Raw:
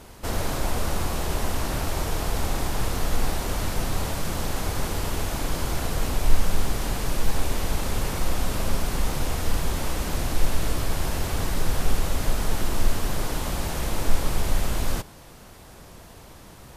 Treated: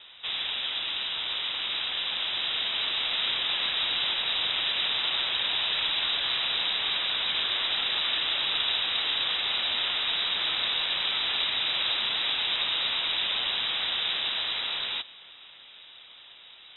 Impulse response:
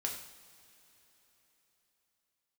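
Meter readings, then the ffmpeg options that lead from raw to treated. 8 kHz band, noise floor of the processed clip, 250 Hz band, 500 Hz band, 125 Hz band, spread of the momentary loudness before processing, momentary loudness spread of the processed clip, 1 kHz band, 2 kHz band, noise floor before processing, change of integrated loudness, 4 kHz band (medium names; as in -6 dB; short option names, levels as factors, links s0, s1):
under -40 dB, -50 dBFS, -19.0 dB, -12.0 dB, under -25 dB, 3 LU, 4 LU, -5.0 dB, +4.5 dB, -46 dBFS, +3.0 dB, +13.5 dB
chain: -af "highpass=170,dynaudnorm=f=400:g=13:m=1.78,lowpass=f=3400:t=q:w=0.5098,lowpass=f=3400:t=q:w=0.6013,lowpass=f=3400:t=q:w=0.9,lowpass=f=3400:t=q:w=2.563,afreqshift=-4000"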